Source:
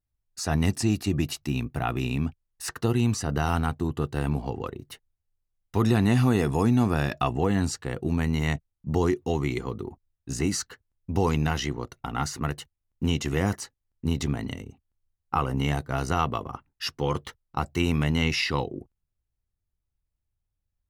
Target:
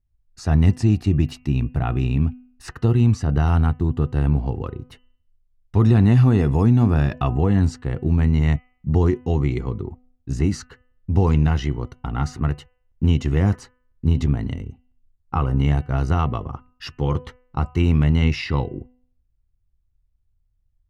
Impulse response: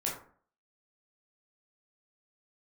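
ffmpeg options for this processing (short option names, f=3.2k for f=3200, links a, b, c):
-af "aemphasis=mode=reproduction:type=bsi,bandreject=f=250.1:t=h:w=4,bandreject=f=500.2:t=h:w=4,bandreject=f=750.3:t=h:w=4,bandreject=f=1.0004k:t=h:w=4,bandreject=f=1.2505k:t=h:w=4,bandreject=f=1.5006k:t=h:w=4,bandreject=f=1.7507k:t=h:w=4,bandreject=f=2.0008k:t=h:w=4,bandreject=f=2.2509k:t=h:w=4,bandreject=f=2.501k:t=h:w=4,bandreject=f=2.7511k:t=h:w=4,bandreject=f=3.0012k:t=h:w=4"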